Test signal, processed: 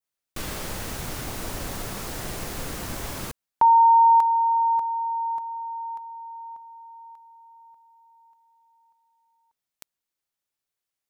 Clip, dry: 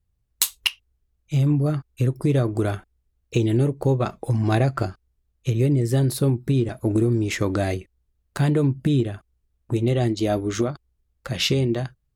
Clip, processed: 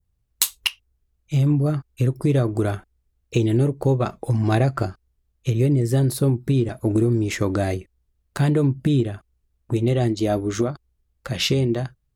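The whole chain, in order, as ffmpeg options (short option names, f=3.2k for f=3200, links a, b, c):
-af "adynamicequalizer=threshold=0.00794:dfrequency=3000:dqfactor=0.87:tfrequency=3000:tqfactor=0.87:attack=5:release=100:ratio=0.375:range=2:mode=cutabove:tftype=bell,volume=1dB"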